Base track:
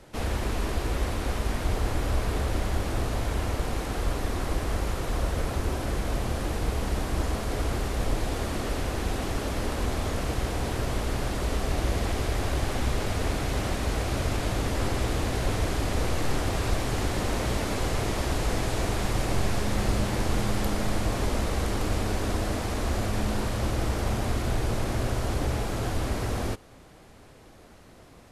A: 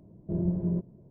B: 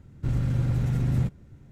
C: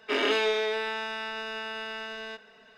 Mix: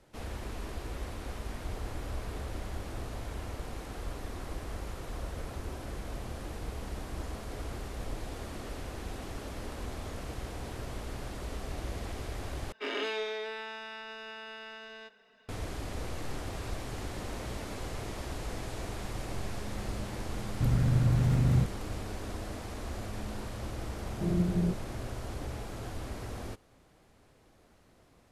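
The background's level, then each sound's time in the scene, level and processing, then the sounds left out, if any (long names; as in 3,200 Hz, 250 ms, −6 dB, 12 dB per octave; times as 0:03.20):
base track −11 dB
0:12.72: overwrite with C −8.5 dB
0:20.37: mix in B −1 dB
0:23.92: mix in A −0.5 dB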